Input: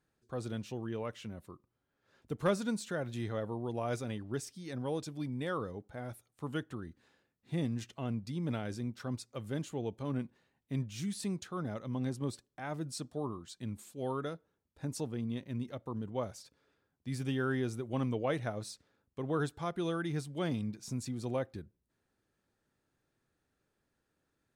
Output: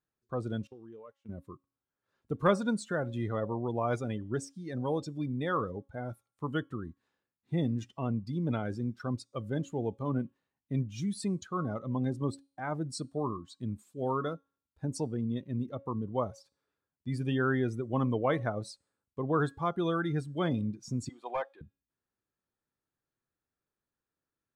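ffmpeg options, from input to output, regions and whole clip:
-filter_complex "[0:a]asettb=1/sr,asplit=3[s0][s1][s2];[s0]atrim=end=0.674[s3];[s1]atrim=start=0.67:end=1.29,asetpts=PTS-STARTPTS,afade=t=in:d=0.004:c=qsin,afade=t=out:st=0.616:d=0.004:c=qsin,agate=range=0.0794:threshold=0.00562:ratio=16:release=100:detection=peak,bass=f=250:g=-8,treble=f=4000:g=2,acompressor=threshold=0.00447:ratio=10:attack=3.2:release=140:knee=1:detection=peak[s4];[s2]atrim=start=1.286[s5];[s3][s4]acrossfade=d=0.004:c1=hsin:c2=qsin[s6];[s6][s5]acrossfade=d=0.004:c1=qsin:c2=hsin,asettb=1/sr,asplit=3[s7][s8][s9];[s7]atrim=end=21.094[s10];[s8]atrim=start=21.09:end=21.61,asetpts=PTS-STARTPTS,afade=t=in:d=0.004:c=qsin,afade=t=out:st=0.516:d=0.004:c=qsin,highpass=f=780:t=q:w=1.7,highshelf=f=4200:t=q:w=3:g=-9,volume=44.7,asoftclip=hard,volume=0.0224[s11];[s9]atrim=start=21.606[s12];[s10][s11]acrossfade=d=0.004:c1=hsin:c2=qsin[s13];[s13][s12]acrossfade=d=0.004:c1=qsin:c2=hsin,bandreject=f=275.9:t=h:w=4,bandreject=f=551.8:t=h:w=4,bandreject=f=827.7:t=h:w=4,bandreject=f=1103.6:t=h:w=4,bandreject=f=1379.5:t=h:w=4,bandreject=f=1655.4:t=h:w=4,bandreject=f=1931.3:t=h:w=4,bandreject=f=2207.2:t=h:w=4,bandreject=f=2483.1:t=h:w=4,bandreject=f=2759:t=h:w=4,bandreject=f=3034.9:t=h:w=4,bandreject=f=3310.8:t=h:w=4,bandreject=f=3586.7:t=h:w=4,bandreject=f=3862.6:t=h:w=4,bandreject=f=4138.5:t=h:w=4,bandreject=f=4414.4:t=h:w=4,bandreject=f=4690.3:t=h:w=4,bandreject=f=4966.2:t=h:w=4,bandreject=f=5242.1:t=h:w=4,bandreject=f=5518:t=h:w=4,bandreject=f=5793.9:t=h:w=4,bandreject=f=6069.8:t=h:w=4,bandreject=f=6345.7:t=h:w=4,bandreject=f=6621.6:t=h:w=4,bandreject=f=6897.5:t=h:w=4,bandreject=f=7173.4:t=h:w=4,bandreject=f=7449.3:t=h:w=4,bandreject=f=7725.2:t=h:w=4,bandreject=f=8001.1:t=h:w=4,bandreject=f=8277:t=h:w=4,bandreject=f=8552.9:t=h:w=4,bandreject=f=8828.8:t=h:w=4,bandreject=f=9104.7:t=h:w=4,bandreject=f=9380.6:t=h:w=4,bandreject=f=9656.5:t=h:w=4,afftdn=nr=16:nf=-45,equalizer=f=1100:t=o:w=0.57:g=5,volume=1.58"

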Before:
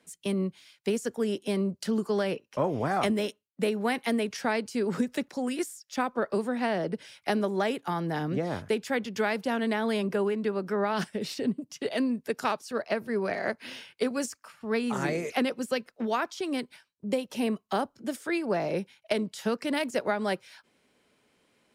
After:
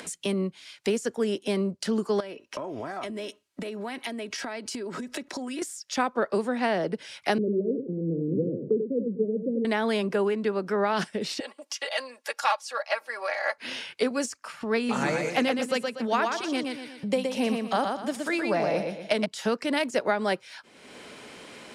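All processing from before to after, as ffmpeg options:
-filter_complex "[0:a]asettb=1/sr,asplit=3[s0][s1][s2];[s0]atrim=end=2.204[s3];[s1]atrim=start=2.2:end=5.62,asetpts=PTS-STARTPTS,afade=t=in:d=0.004:c=qsin,afade=t=out:st=3.416:d=0.004:c=qsin,acompressor=threshold=0.0126:ratio=8:attack=3.2:release=140:knee=1:detection=peak,aecho=1:1:3.1:0.39,atrim=end_sample=150822[s4];[s2]atrim=start=5.616[s5];[s3][s4]acrossfade=d=0.004:c1=hsin:c2=qsin[s6];[s6][s5]acrossfade=d=0.004:c1=qsin:c2=hsin,asettb=1/sr,asplit=3[s7][s8][s9];[s7]atrim=end=7.384[s10];[s8]atrim=start=7.38:end=9.65,asetpts=PTS-STARTPTS,afade=t=in:d=0.004:c=qsin,afade=t=out:st=2.266:d=0.004:c=qsin,aeval=exprs='val(0)+0.5*0.015*sgn(val(0))':c=same,asuperpass=centerf=250:order=20:qfactor=0.62,aecho=1:1:90:0.447,atrim=end_sample=100107[s11];[s9]atrim=start=9.646[s12];[s10][s11]acrossfade=d=0.004:c1=hsin:c2=qsin[s13];[s13][s12]acrossfade=d=0.004:c1=qsin:c2=hsin,asettb=1/sr,asplit=3[s14][s15][s16];[s14]atrim=end=11.404[s17];[s15]atrim=start=11.4:end=13.58,asetpts=PTS-STARTPTS,afade=t=in:d=0.004:c=qsin,afade=t=out:st=2.176:d=0.004:c=qsin,highpass=f=650:w=0.5412,highpass=f=650:w=1.3066,aecho=1:1:3.6:0.73,atrim=end_sample=96138[s18];[s16]atrim=start=13.576[s19];[s17][s18]acrossfade=d=0.004:c1=hsin:c2=qsin[s20];[s20][s19]acrossfade=d=0.004:c1=qsin:c2=hsin,asettb=1/sr,asplit=3[s21][s22][s23];[s21]atrim=end=14.774[s24];[s22]atrim=start=14.77:end=19.26,asetpts=PTS-STARTPTS,afade=t=in:d=0.004:c=qsin,afade=t=out:st=4.486:d=0.004:c=qsin,bandreject=f=380:w=5,aecho=1:1:120|240|360|480:0.596|0.185|0.0572|0.0177,atrim=end_sample=198009[s25];[s23]atrim=start=19.256[s26];[s24][s25]acrossfade=d=0.004:c1=hsin:c2=qsin[s27];[s27][s26]acrossfade=d=0.004:c1=qsin:c2=hsin,lowpass=9500,lowshelf=f=160:g=-8,acompressor=mode=upward:threshold=0.0282:ratio=2.5,volume=1.5"

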